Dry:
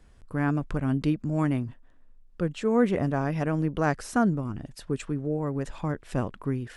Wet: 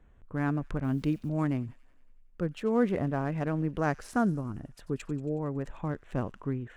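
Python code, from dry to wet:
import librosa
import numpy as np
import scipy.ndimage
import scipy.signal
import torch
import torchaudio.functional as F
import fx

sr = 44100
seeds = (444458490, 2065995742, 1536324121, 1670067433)

y = fx.wiener(x, sr, points=9)
y = fx.quant_dither(y, sr, seeds[0], bits=10, dither='none', at=(0.84, 1.29))
y = fx.echo_wet_highpass(y, sr, ms=92, feedback_pct=66, hz=3400.0, wet_db=-14)
y = F.gain(torch.from_numpy(y), -3.5).numpy()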